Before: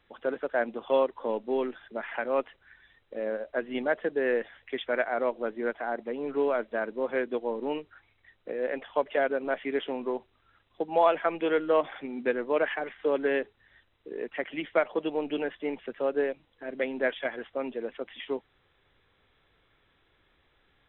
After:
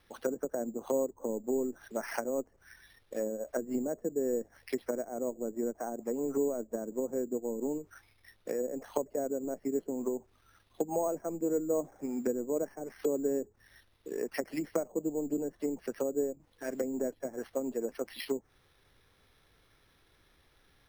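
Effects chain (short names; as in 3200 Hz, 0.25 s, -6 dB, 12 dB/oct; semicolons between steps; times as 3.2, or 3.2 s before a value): tone controls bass +3 dB, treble +5 dB; treble ducked by the level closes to 380 Hz, closed at -27 dBFS; sample-and-hold 6×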